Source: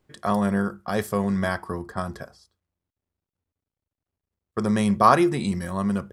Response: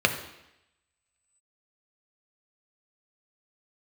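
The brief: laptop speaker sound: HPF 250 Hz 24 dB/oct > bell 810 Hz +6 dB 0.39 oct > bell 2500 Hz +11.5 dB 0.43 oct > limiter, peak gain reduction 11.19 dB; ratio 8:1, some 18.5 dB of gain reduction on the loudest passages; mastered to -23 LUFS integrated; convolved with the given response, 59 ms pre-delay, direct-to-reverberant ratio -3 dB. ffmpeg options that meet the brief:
-filter_complex "[0:a]acompressor=threshold=-30dB:ratio=8,asplit=2[a][b];[1:a]atrim=start_sample=2205,adelay=59[c];[b][c]afir=irnorm=-1:irlink=0,volume=-12.5dB[d];[a][d]amix=inputs=2:normalize=0,highpass=f=250:w=0.5412,highpass=f=250:w=1.3066,equalizer=f=810:t=o:w=0.39:g=6,equalizer=f=2.5k:t=o:w=0.43:g=11.5,volume=13.5dB,alimiter=limit=-13dB:level=0:latency=1"

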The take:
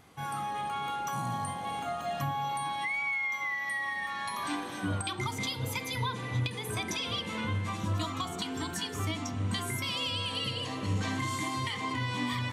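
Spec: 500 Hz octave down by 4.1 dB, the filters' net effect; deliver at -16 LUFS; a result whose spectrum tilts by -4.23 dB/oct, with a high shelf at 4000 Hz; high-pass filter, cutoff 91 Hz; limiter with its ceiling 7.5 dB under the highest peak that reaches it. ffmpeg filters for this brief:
-af "highpass=91,equalizer=f=500:t=o:g=-5.5,highshelf=f=4k:g=-6.5,volume=20dB,alimiter=limit=-7.5dB:level=0:latency=1"

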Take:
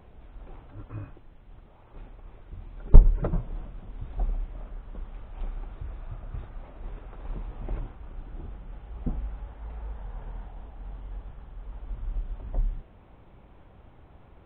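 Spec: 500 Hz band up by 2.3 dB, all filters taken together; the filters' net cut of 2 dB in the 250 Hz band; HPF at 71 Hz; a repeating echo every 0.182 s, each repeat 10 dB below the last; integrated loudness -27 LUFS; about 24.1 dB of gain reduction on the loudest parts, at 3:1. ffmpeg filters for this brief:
-af "highpass=71,equalizer=f=250:t=o:g=-4,equalizer=f=500:t=o:g=4,acompressor=threshold=-49dB:ratio=3,aecho=1:1:182|364|546|728:0.316|0.101|0.0324|0.0104,volume=26dB"

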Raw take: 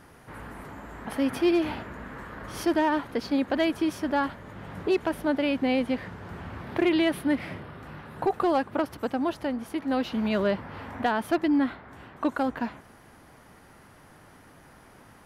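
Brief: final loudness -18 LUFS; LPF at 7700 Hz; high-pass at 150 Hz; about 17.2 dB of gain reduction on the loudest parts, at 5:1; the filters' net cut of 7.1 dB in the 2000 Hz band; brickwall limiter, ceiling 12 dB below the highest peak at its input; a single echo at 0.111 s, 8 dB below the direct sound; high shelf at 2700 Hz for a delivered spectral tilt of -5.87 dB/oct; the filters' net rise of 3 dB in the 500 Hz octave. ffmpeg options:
-af "highpass=150,lowpass=7.7k,equalizer=f=500:t=o:g=5,equalizer=f=2k:t=o:g=-7,highshelf=f=2.7k:g=-6.5,acompressor=threshold=-38dB:ratio=5,alimiter=level_in=11.5dB:limit=-24dB:level=0:latency=1,volume=-11.5dB,aecho=1:1:111:0.398,volume=27dB"

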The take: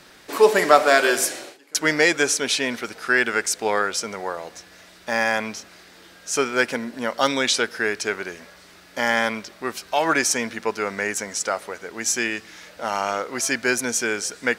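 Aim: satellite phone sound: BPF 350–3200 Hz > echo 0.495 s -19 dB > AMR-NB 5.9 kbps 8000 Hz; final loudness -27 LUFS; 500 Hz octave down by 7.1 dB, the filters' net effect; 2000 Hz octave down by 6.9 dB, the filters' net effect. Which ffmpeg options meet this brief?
-af "highpass=350,lowpass=3.2k,equalizer=f=500:t=o:g=-7,equalizer=f=2k:t=o:g=-8,aecho=1:1:495:0.112,volume=3dB" -ar 8000 -c:a libopencore_amrnb -b:a 5900

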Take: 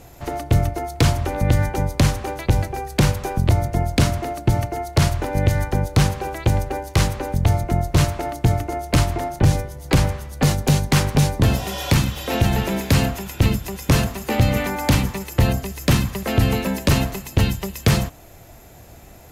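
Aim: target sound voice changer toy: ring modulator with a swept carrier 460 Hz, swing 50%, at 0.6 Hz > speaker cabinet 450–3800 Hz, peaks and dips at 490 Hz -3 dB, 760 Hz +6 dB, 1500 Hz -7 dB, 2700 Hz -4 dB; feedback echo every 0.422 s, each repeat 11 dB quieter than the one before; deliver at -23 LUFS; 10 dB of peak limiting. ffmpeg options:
-af "alimiter=limit=-15.5dB:level=0:latency=1,aecho=1:1:422|844|1266:0.282|0.0789|0.0221,aeval=exprs='val(0)*sin(2*PI*460*n/s+460*0.5/0.6*sin(2*PI*0.6*n/s))':c=same,highpass=450,equalizer=f=490:t=q:w=4:g=-3,equalizer=f=760:t=q:w=4:g=6,equalizer=f=1.5k:t=q:w=4:g=-7,equalizer=f=2.7k:t=q:w=4:g=-4,lowpass=f=3.8k:w=0.5412,lowpass=f=3.8k:w=1.3066,volume=7dB"

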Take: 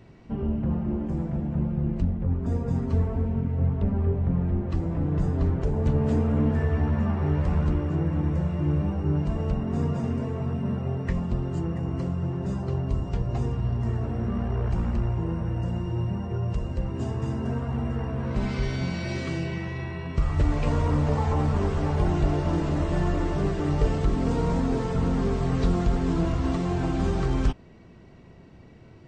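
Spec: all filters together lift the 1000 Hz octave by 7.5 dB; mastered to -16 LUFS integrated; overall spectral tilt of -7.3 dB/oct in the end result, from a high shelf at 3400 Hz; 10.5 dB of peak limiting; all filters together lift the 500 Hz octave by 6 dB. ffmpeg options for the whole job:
-af "equalizer=f=500:t=o:g=6,equalizer=f=1k:t=o:g=8,highshelf=f=3.4k:g=-7,volume=12dB,alimiter=limit=-6.5dB:level=0:latency=1"

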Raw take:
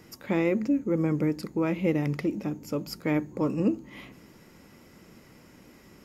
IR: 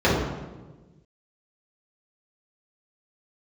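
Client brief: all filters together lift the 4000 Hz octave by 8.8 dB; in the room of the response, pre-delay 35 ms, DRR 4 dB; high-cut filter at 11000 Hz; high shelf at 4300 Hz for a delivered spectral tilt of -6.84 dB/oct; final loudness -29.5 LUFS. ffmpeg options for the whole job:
-filter_complex "[0:a]lowpass=11k,equalizer=f=4k:t=o:g=8,highshelf=f=4.3k:g=6,asplit=2[a][b];[1:a]atrim=start_sample=2205,adelay=35[c];[b][c]afir=irnorm=-1:irlink=0,volume=-25.5dB[d];[a][d]amix=inputs=2:normalize=0,volume=-5.5dB"

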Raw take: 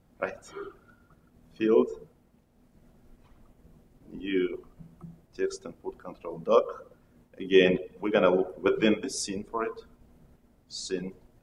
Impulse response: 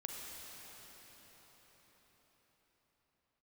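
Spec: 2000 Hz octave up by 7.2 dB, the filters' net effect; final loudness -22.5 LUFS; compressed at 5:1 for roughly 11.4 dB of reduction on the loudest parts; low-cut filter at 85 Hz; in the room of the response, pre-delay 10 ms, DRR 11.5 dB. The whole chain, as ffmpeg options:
-filter_complex "[0:a]highpass=85,equalizer=f=2k:t=o:g=9,acompressor=threshold=-27dB:ratio=5,asplit=2[a][b];[1:a]atrim=start_sample=2205,adelay=10[c];[b][c]afir=irnorm=-1:irlink=0,volume=-11dB[d];[a][d]amix=inputs=2:normalize=0,volume=11.5dB"

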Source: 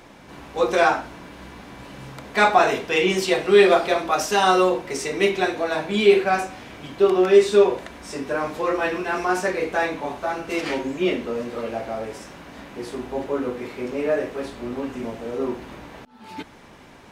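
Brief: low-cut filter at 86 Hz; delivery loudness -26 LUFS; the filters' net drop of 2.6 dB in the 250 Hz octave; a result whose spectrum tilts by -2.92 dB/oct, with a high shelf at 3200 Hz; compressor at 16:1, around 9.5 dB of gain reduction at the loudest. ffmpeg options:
-af "highpass=86,equalizer=f=250:t=o:g=-4.5,highshelf=f=3.2k:g=5,acompressor=threshold=-19dB:ratio=16,volume=0.5dB"

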